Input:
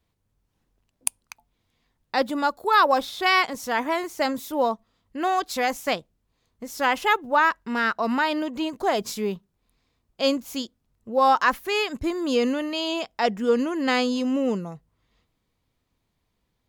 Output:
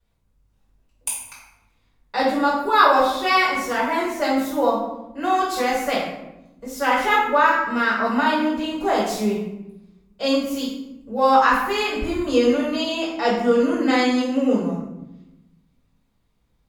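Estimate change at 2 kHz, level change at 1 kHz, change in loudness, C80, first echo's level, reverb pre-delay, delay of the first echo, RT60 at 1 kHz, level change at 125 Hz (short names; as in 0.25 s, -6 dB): +3.0 dB, +4.0 dB, +3.5 dB, 5.0 dB, none, 3 ms, none, 0.85 s, +5.5 dB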